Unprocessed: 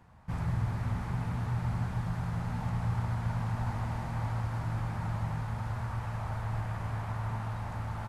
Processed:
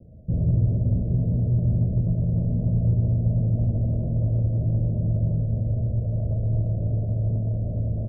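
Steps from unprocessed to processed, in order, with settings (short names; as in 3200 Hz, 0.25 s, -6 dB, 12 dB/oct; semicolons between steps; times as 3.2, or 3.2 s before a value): steep low-pass 640 Hz 96 dB/oct; in parallel at -6 dB: soft clip -32 dBFS, distortion -13 dB; on the sum: gain +8.5 dB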